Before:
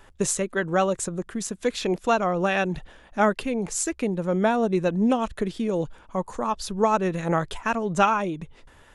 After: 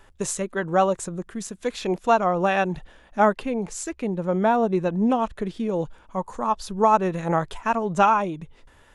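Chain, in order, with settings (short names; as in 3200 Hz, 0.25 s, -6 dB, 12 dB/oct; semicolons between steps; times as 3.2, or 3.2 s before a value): dynamic EQ 900 Hz, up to +6 dB, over -36 dBFS, Q 1.3; harmonic-percussive split percussive -4 dB; 3.33–5.79 high shelf 6500 Hz -6 dB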